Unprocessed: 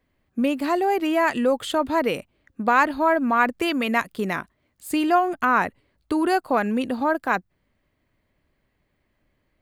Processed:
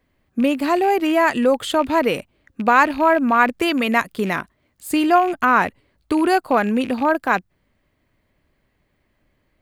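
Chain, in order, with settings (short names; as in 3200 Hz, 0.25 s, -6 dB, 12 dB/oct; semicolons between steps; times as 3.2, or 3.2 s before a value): rattling part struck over -37 dBFS, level -29 dBFS; gain +4 dB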